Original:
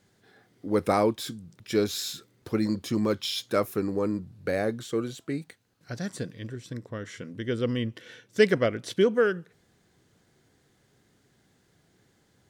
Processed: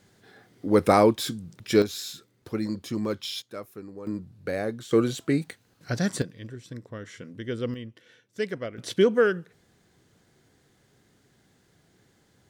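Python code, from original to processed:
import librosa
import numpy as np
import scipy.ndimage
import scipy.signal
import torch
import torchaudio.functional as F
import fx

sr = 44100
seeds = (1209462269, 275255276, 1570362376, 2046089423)

y = fx.gain(x, sr, db=fx.steps((0.0, 5.0), (1.82, -3.0), (3.42, -13.0), (4.07, -2.0), (4.91, 7.5), (6.22, -2.5), (7.74, -9.5), (8.78, 2.0)))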